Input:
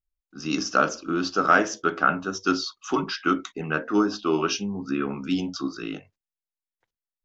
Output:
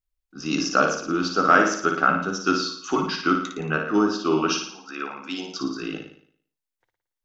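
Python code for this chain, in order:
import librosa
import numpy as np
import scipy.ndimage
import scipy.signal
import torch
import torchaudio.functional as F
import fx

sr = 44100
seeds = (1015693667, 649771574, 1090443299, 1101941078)

p1 = fx.highpass(x, sr, hz=fx.line((4.54, 1100.0), (5.59, 340.0)), slope=12, at=(4.54, 5.59), fade=0.02)
p2 = p1 + fx.room_flutter(p1, sr, wall_m=9.7, rt60_s=0.6, dry=0)
y = F.gain(torch.from_numpy(p2), 1.0).numpy()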